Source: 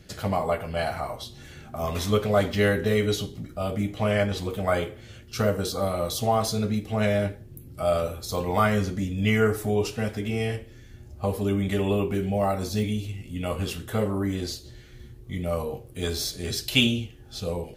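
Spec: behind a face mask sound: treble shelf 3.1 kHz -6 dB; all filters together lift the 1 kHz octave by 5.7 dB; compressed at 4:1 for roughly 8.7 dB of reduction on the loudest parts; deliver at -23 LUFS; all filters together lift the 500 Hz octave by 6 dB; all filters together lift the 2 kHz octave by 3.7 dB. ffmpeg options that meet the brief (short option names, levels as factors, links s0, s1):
-af "equalizer=f=500:t=o:g=6,equalizer=f=1000:t=o:g=5,equalizer=f=2000:t=o:g=5,acompressor=threshold=0.0794:ratio=4,highshelf=f=3100:g=-6,volume=1.78"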